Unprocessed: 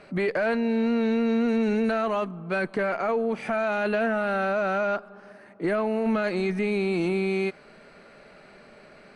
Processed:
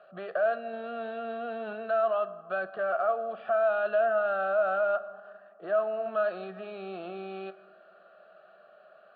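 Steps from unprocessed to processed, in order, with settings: in parallel at +0.5 dB: level quantiser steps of 16 dB; 0.73–1.73 on the sum: sample leveller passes 1; speaker cabinet 320–3200 Hz, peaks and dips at 440 Hz -8 dB, 680 Hz +10 dB, 1200 Hz +6 dB, 2300 Hz -8 dB; fixed phaser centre 1400 Hz, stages 8; dark delay 0.139 s, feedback 77%, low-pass 540 Hz, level -22 dB; on a send at -13 dB: reverb RT60 1.1 s, pre-delay 7 ms; on the sum: gain -8 dB

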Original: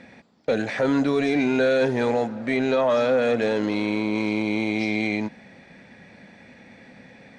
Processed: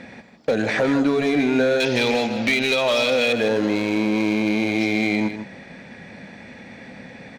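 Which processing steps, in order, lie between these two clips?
1.8–3.33 band shelf 3700 Hz +15.5 dB; compressor 6:1, threshold -23 dBFS, peak gain reduction 9.5 dB; overloaded stage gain 20.5 dB; echo 0.155 s -9.5 dB; gain +7 dB

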